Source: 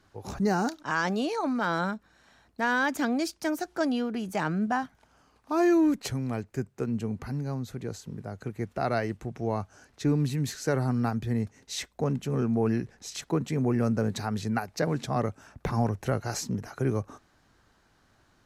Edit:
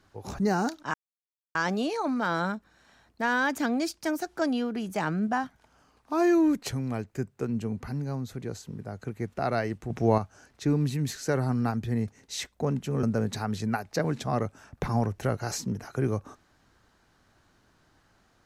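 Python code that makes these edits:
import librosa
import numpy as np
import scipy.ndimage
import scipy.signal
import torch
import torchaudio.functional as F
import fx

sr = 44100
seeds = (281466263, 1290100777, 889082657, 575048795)

y = fx.edit(x, sr, fx.insert_silence(at_s=0.94, length_s=0.61),
    fx.clip_gain(start_s=9.29, length_s=0.28, db=7.0),
    fx.cut(start_s=12.42, length_s=1.44), tone=tone)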